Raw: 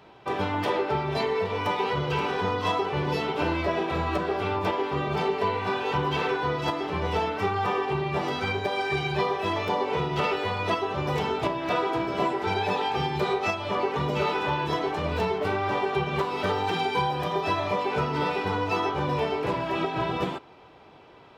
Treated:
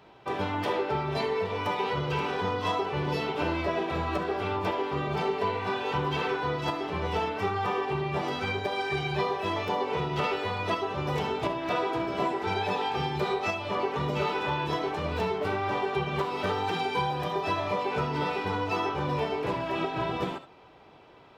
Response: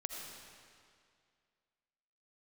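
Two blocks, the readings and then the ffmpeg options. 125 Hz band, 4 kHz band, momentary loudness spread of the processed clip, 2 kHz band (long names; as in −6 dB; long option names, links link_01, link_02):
−2.0 dB, −2.5 dB, 2 LU, −2.5 dB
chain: -filter_complex "[1:a]atrim=start_sample=2205,atrim=end_sample=3528[link_01];[0:a][link_01]afir=irnorm=-1:irlink=0"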